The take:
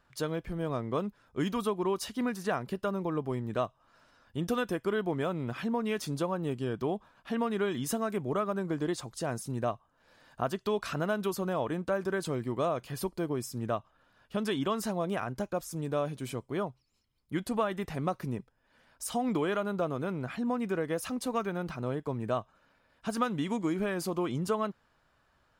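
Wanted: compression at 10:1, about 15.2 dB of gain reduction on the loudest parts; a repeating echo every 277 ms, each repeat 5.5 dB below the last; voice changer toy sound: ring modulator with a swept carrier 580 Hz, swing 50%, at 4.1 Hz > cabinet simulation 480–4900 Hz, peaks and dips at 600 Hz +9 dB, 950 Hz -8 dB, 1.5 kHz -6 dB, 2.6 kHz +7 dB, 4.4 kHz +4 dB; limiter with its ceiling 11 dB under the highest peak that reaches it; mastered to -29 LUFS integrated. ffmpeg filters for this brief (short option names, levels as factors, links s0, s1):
-af "acompressor=threshold=0.00891:ratio=10,alimiter=level_in=6.68:limit=0.0631:level=0:latency=1,volume=0.15,aecho=1:1:277|554|831|1108|1385|1662|1939:0.531|0.281|0.149|0.079|0.0419|0.0222|0.0118,aeval=exprs='val(0)*sin(2*PI*580*n/s+580*0.5/4.1*sin(2*PI*4.1*n/s))':c=same,highpass=480,equalizer=f=600:t=q:w=4:g=9,equalizer=f=950:t=q:w=4:g=-8,equalizer=f=1500:t=q:w=4:g=-6,equalizer=f=2600:t=q:w=4:g=7,equalizer=f=4400:t=q:w=4:g=4,lowpass=f=4900:w=0.5412,lowpass=f=4900:w=1.3066,volume=15"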